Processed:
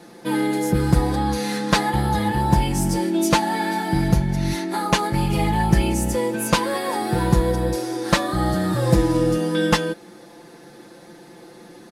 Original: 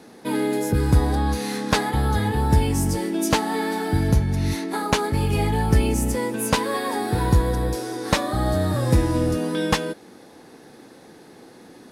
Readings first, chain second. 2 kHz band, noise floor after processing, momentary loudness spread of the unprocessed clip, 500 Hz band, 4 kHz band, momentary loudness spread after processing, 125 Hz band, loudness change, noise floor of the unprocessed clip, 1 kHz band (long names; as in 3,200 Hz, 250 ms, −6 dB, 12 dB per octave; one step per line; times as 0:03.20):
+2.0 dB, −45 dBFS, 5 LU, +1.5 dB, +2.0 dB, 5 LU, 0.0 dB, +1.5 dB, −47 dBFS, +3.0 dB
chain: comb filter 5.8 ms, depth 84%
highs frequency-modulated by the lows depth 0.19 ms